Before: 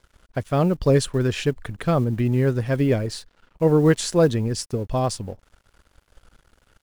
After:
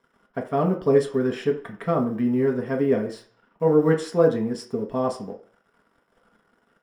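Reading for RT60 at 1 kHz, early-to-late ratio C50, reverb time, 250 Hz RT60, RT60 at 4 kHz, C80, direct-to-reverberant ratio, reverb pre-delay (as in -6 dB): 0.45 s, 11.0 dB, 0.45 s, 0.40 s, 0.45 s, 14.5 dB, 0.0 dB, 3 ms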